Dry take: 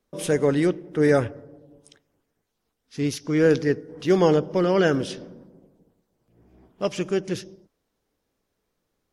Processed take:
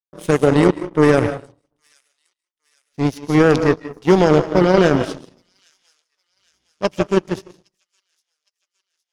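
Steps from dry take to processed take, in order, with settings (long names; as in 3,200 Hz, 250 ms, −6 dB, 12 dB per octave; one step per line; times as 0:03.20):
low-shelf EQ 500 Hz +5 dB
comb and all-pass reverb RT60 0.45 s, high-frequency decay 0.45×, pre-delay 115 ms, DRR 7.5 dB
power curve on the samples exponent 2
delay with a high-pass on its return 812 ms, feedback 52%, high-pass 5,200 Hz, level −24 dB
boost into a limiter +15 dB
level −1 dB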